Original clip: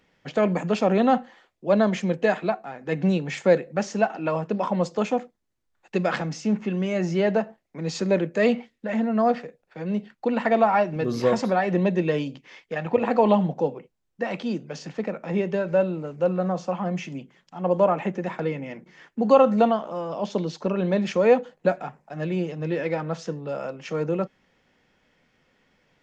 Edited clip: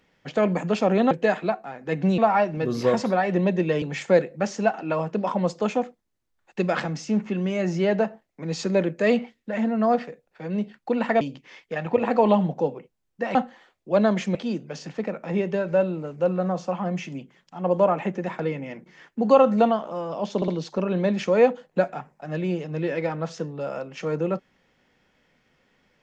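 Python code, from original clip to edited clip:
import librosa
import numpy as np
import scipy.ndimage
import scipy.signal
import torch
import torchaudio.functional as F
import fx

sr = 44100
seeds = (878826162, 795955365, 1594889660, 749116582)

y = fx.edit(x, sr, fx.move(start_s=1.11, length_s=1.0, to_s=14.35),
    fx.move(start_s=10.57, length_s=1.64, to_s=3.18),
    fx.stutter(start_s=20.36, slice_s=0.06, count=3), tone=tone)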